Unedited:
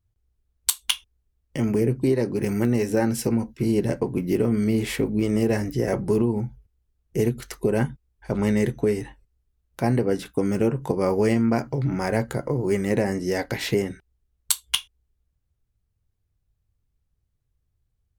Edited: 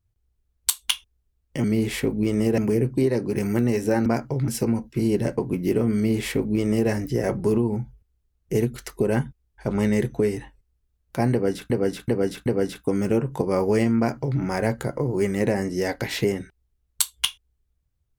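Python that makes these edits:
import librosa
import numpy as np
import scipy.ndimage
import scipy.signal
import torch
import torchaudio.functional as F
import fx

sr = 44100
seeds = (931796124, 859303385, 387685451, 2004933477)

y = fx.edit(x, sr, fx.duplicate(start_s=4.6, length_s=0.94, to_s=1.64),
    fx.repeat(start_s=9.96, length_s=0.38, count=4),
    fx.duplicate(start_s=11.48, length_s=0.42, to_s=3.12), tone=tone)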